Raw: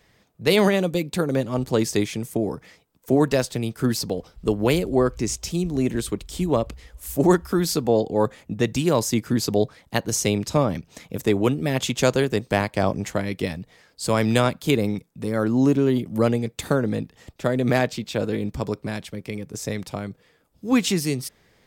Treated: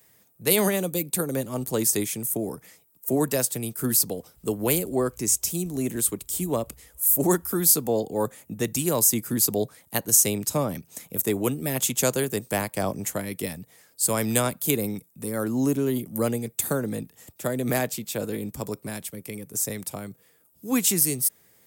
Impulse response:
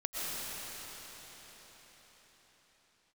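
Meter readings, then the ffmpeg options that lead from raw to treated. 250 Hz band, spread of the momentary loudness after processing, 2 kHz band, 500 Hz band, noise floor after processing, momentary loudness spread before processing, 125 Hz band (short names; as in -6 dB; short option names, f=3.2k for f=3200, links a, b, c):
-5.0 dB, 13 LU, -5.0 dB, -5.0 dB, -61 dBFS, 11 LU, -6.0 dB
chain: -filter_complex "[0:a]highpass=90,acrossover=split=260|1500|7500[a][b][c][d];[d]crystalizer=i=7.5:c=0[e];[a][b][c][e]amix=inputs=4:normalize=0,volume=-5dB"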